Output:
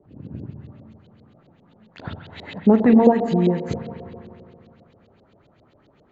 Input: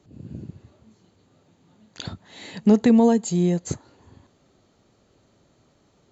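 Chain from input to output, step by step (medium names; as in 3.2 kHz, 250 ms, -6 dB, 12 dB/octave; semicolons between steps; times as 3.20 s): spring tank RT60 2.6 s, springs 36/50 ms, chirp 30 ms, DRR 5 dB; LFO low-pass saw up 7.5 Hz 440–4100 Hz; trim +1 dB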